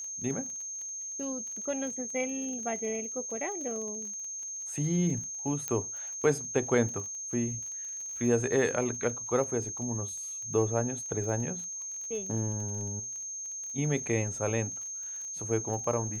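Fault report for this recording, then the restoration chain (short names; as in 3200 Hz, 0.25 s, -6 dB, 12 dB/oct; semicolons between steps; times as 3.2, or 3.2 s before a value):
crackle 27/s -39 dBFS
tone 6400 Hz -36 dBFS
5.68 pop -17 dBFS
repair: de-click; notch 6400 Hz, Q 30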